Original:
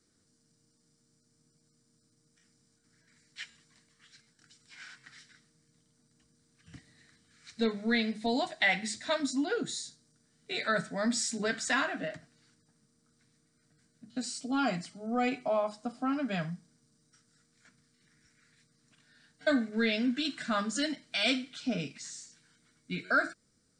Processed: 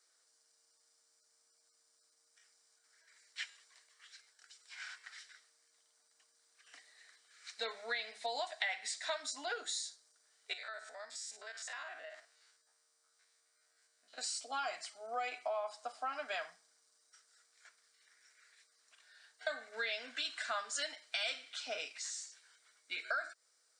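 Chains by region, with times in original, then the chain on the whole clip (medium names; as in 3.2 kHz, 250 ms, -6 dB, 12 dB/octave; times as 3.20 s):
10.53–14.18 s: spectrogram pixelated in time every 50 ms + bass shelf 190 Hz -10 dB + compression 4:1, threshold -46 dBFS
whole clip: high-pass 610 Hz 24 dB/octave; compression 5:1, threshold -37 dBFS; trim +1.5 dB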